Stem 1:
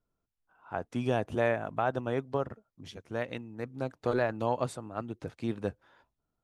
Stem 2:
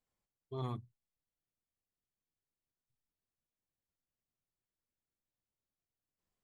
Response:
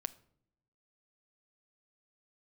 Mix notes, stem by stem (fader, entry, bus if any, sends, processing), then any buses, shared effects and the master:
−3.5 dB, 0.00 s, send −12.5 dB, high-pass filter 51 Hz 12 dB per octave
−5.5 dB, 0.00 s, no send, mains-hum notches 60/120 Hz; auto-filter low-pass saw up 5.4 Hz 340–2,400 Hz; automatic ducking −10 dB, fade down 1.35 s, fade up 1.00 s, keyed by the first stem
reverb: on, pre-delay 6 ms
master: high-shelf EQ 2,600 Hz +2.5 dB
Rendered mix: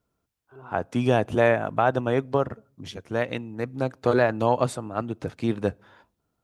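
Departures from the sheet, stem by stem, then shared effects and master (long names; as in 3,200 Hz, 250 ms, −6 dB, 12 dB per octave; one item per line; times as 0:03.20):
stem 1 −3.5 dB → +6.5 dB
master: missing high-shelf EQ 2,600 Hz +2.5 dB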